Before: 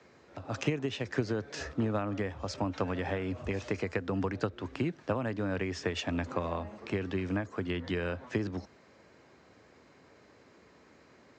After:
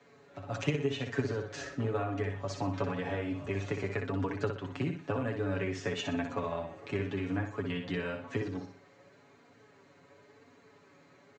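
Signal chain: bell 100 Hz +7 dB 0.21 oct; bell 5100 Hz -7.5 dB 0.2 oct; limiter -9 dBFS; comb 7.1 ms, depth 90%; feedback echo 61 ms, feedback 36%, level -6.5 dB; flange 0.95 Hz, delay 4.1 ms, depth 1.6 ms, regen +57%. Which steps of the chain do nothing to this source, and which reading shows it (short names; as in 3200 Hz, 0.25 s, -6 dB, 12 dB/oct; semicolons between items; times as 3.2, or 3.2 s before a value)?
limiter -9 dBFS: input peak -15.5 dBFS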